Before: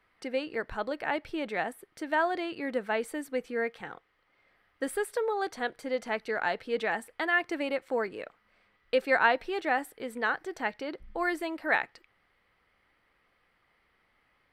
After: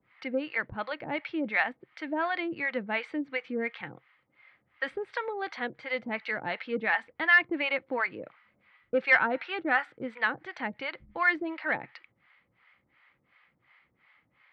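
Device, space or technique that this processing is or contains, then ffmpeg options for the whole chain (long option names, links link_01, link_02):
guitar amplifier with harmonic tremolo: -filter_complex "[0:a]acrossover=split=610[link_01][link_02];[link_01]aeval=exprs='val(0)*(1-1/2+1/2*cos(2*PI*2.8*n/s))':channel_layout=same[link_03];[link_02]aeval=exprs='val(0)*(1-1/2-1/2*cos(2*PI*2.8*n/s))':channel_layout=same[link_04];[link_03][link_04]amix=inputs=2:normalize=0,asoftclip=type=tanh:threshold=-20dB,highpass=99,equalizer=frequency=130:width_type=q:width=4:gain=6,equalizer=frequency=420:width_type=q:width=4:gain=-9,equalizer=frequency=680:width_type=q:width=4:gain=-5,equalizer=frequency=2200:width_type=q:width=4:gain=6,lowpass=frequency=3800:width=0.5412,lowpass=frequency=3800:width=1.3066,asettb=1/sr,asplit=3[link_05][link_06][link_07];[link_05]atrim=end=9.224[link_08];[link_06]atrim=start=9.22:end=10.09,asetpts=PTS-STARTPTS,afade=type=in:duration=0.004:curve=qsin,afade=type=out:start_time=0.866:duration=0.004:curve=qsin,equalizer=frequency=1400:width_type=o:width=0.29:gain=10[link_09];[link_07]atrim=start=10.086[link_10];[link_08][link_09]acrossfade=duration=0.004:curve1=hsin:curve2=qsin[link_11];[link_11][link_10]acrossfade=duration=0.004:curve1=qsin:curve2=hsin,volume=7.5dB"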